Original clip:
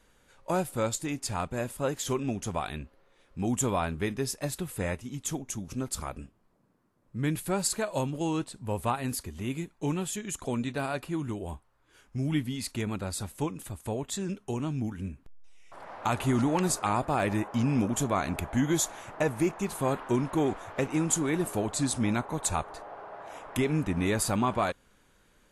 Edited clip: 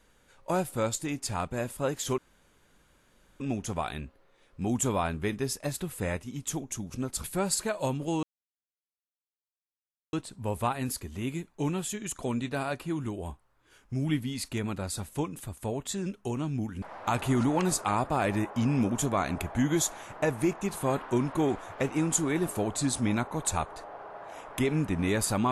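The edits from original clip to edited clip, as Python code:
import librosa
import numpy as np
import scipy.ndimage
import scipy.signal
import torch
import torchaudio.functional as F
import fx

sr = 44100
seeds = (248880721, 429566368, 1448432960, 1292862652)

y = fx.edit(x, sr, fx.insert_room_tone(at_s=2.18, length_s=1.22),
    fx.cut(start_s=6.02, length_s=1.35),
    fx.insert_silence(at_s=8.36, length_s=1.9),
    fx.cut(start_s=15.05, length_s=0.75), tone=tone)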